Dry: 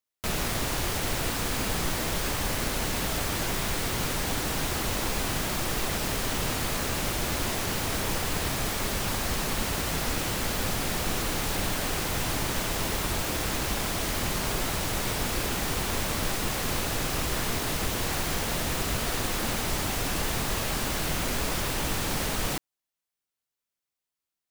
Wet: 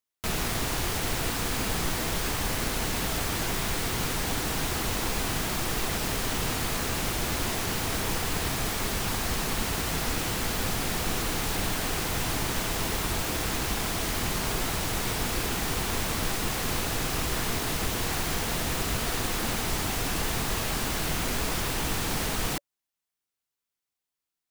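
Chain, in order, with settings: band-stop 570 Hz, Q 12

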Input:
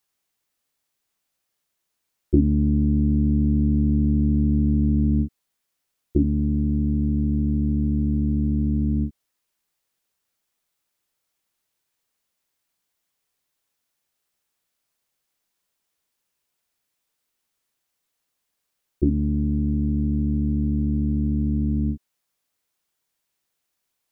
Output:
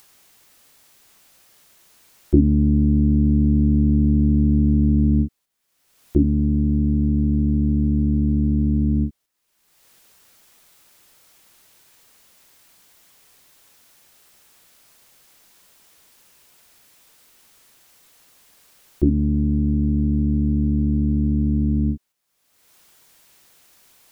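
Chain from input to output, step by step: upward compressor, threshold -30 dBFS; gate -48 dBFS, range -6 dB; trim +3 dB

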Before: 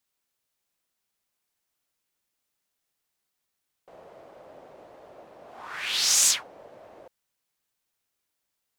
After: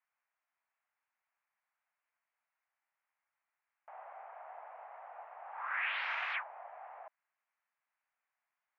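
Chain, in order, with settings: mistuned SSB +120 Hz 580–2200 Hz; trim +1.5 dB

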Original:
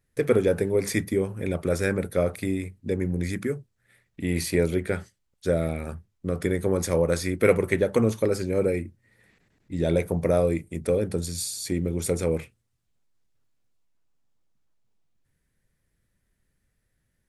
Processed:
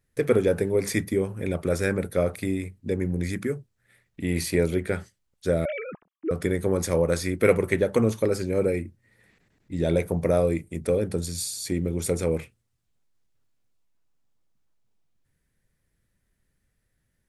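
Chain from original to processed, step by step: 5.65–6.31 s: formants replaced by sine waves

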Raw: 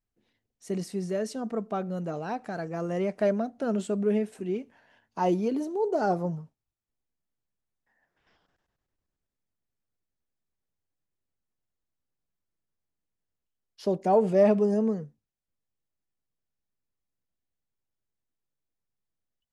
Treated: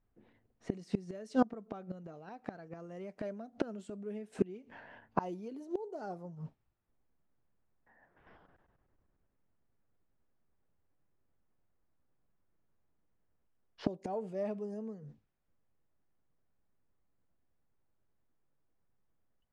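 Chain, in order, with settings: level-controlled noise filter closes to 1.5 kHz, open at -24.5 dBFS; inverted gate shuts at -26 dBFS, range -26 dB; trim +9.5 dB

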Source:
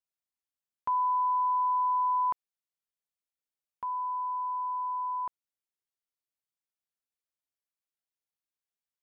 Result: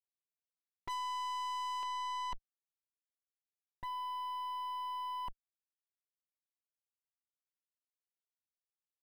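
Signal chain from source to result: comb filter that takes the minimum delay 5.2 ms; saturation -29 dBFS, distortion -13 dB; elliptic low-pass 880 Hz, stop band 80 dB; gate -36 dBFS, range -26 dB; peaking EQ 410 Hz +10 dB 0.89 oct, from 1.83 s -7.5 dB; waveshaping leveller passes 5; trim +15.5 dB

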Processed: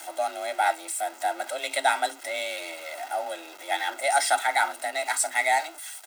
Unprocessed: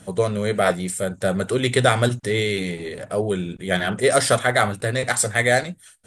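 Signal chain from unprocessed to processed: jump at every zero crossing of -28.5 dBFS; high-pass 470 Hz 12 dB/octave; comb 1.6 ms, depth 71%; frequency shift +150 Hz; word length cut 10-bit, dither triangular; trim -7.5 dB

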